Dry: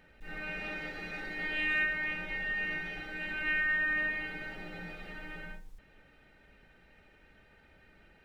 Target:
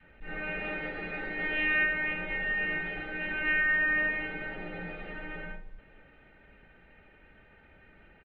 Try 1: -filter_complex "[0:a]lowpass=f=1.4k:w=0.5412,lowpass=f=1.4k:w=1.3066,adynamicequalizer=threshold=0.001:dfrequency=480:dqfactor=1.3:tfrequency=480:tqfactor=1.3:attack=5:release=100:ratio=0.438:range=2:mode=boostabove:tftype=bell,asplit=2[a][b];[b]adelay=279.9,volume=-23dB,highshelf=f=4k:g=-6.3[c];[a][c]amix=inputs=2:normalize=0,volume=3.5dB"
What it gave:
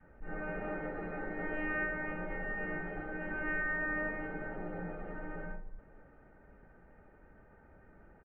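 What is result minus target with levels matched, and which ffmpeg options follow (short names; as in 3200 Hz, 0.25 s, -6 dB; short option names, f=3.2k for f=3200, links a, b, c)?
4000 Hz band -15.0 dB
-filter_complex "[0:a]lowpass=f=3k:w=0.5412,lowpass=f=3k:w=1.3066,adynamicequalizer=threshold=0.001:dfrequency=480:dqfactor=1.3:tfrequency=480:tqfactor=1.3:attack=5:release=100:ratio=0.438:range=2:mode=boostabove:tftype=bell,asplit=2[a][b];[b]adelay=279.9,volume=-23dB,highshelf=f=4k:g=-6.3[c];[a][c]amix=inputs=2:normalize=0,volume=3.5dB"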